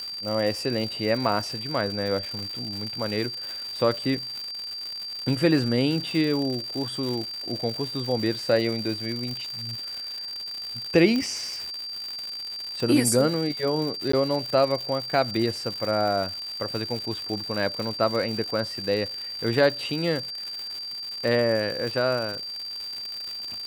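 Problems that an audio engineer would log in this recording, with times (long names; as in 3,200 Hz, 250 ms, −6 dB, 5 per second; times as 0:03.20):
surface crackle 210 per second −30 dBFS
whistle 4,700 Hz −32 dBFS
0:02.39: click −23 dBFS
0:11.16: click −15 dBFS
0:14.12–0:14.13: drop-out 14 ms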